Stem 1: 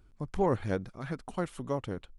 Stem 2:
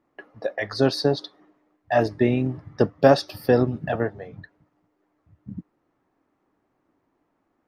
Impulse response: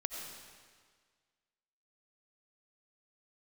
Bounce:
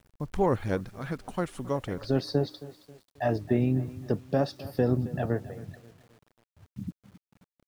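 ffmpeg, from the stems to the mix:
-filter_complex "[0:a]agate=range=-7dB:threshold=-57dB:ratio=16:detection=peak,volume=2.5dB,asplit=3[link_01][link_02][link_03];[link_02]volume=-22dB[link_04];[1:a]alimiter=limit=-10dB:level=0:latency=1:release=185,lowshelf=frequency=340:gain=11,adelay=1300,volume=-9.5dB,asplit=2[link_05][link_06];[link_06]volume=-17.5dB[link_07];[link_03]apad=whole_len=395631[link_08];[link_05][link_08]sidechaincompress=threshold=-38dB:ratio=8:attack=16:release=216[link_09];[link_04][link_07]amix=inputs=2:normalize=0,aecho=0:1:269|538|807|1076|1345:1|0.39|0.152|0.0593|0.0231[link_10];[link_01][link_09][link_10]amix=inputs=3:normalize=0,acrusher=bits=9:mix=0:aa=0.000001"

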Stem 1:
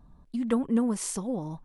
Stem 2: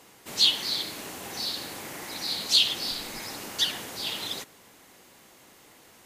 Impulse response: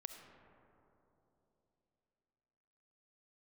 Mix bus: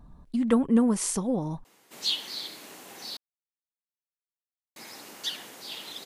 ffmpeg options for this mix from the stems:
-filter_complex "[0:a]acontrast=47,volume=-2dB[link_01];[1:a]highpass=180,adelay=1650,volume=-7dB,asplit=3[link_02][link_03][link_04];[link_02]atrim=end=3.17,asetpts=PTS-STARTPTS,afade=type=out:start_time=3.166:duration=0.004:curve=hsin[link_05];[link_03]atrim=start=3.17:end=4.76,asetpts=PTS-STARTPTS,volume=0[link_06];[link_04]atrim=start=4.76,asetpts=PTS-STARTPTS,afade=type=in:duration=0.004:curve=hsin[link_07];[link_05][link_06][link_07]concat=n=3:v=0:a=1[link_08];[link_01][link_08]amix=inputs=2:normalize=0"

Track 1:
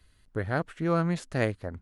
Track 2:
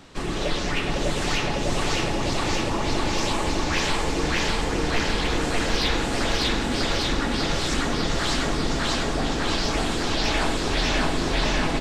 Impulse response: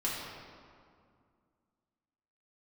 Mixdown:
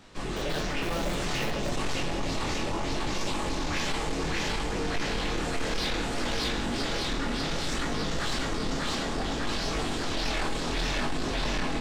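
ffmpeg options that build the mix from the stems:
-filter_complex "[0:a]acrusher=bits=5:dc=4:mix=0:aa=0.000001,volume=-12dB,asplit=2[link_01][link_02];[link_02]volume=-3.5dB[link_03];[1:a]flanger=delay=19.5:depth=6.5:speed=0.62,volume=-2dB,asplit=2[link_04][link_05];[link_05]volume=-18dB[link_06];[2:a]atrim=start_sample=2205[link_07];[link_03][link_06]amix=inputs=2:normalize=0[link_08];[link_08][link_07]afir=irnorm=-1:irlink=0[link_09];[link_01][link_04][link_09]amix=inputs=3:normalize=0,asoftclip=type=tanh:threshold=-22.5dB"

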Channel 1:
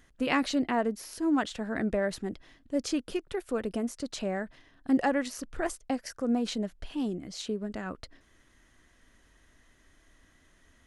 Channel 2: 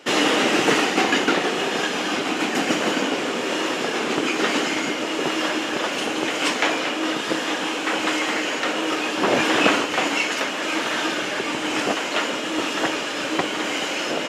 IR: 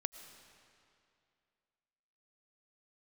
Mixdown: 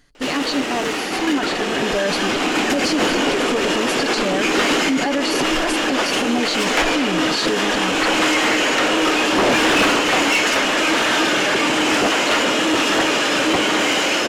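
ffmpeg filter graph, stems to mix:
-filter_complex "[0:a]equalizer=frequency=4500:width_type=o:width=0.23:gain=14.5,aecho=1:1:6.9:0.47,volume=2.5dB[link_01];[1:a]asoftclip=type=tanh:threshold=-19.5dB,adelay=150,volume=-1dB[link_02];[link_01][link_02]amix=inputs=2:normalize=0,dynaudnorm=framelen=720:gausssize=5:maxgain=15.5dB,alimiter=limit=-11.5dB:level=0:latency=1:release=28"

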